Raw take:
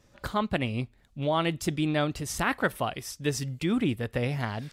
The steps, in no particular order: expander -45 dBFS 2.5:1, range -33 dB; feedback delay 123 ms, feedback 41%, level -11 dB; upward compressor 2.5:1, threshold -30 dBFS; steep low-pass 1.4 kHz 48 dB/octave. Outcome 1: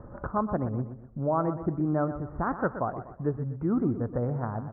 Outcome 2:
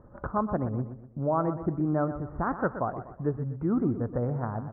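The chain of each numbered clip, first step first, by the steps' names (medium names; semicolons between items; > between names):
steep low-pass > upward compressor > feedback delay > expander; expander > steep low-pass > upward compressor > feedback delay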